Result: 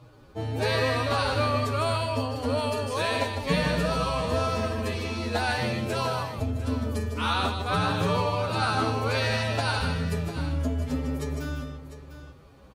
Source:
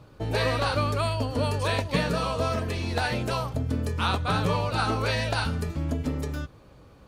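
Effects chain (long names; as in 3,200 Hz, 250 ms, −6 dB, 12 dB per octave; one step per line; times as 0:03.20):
mains-hum notches 50/100/150/200 Hz
phase-vocoder stretch with locked phases 1.8×
multi-tap delay 151/156/700 ms −10.5/−9.5/−12.5 dB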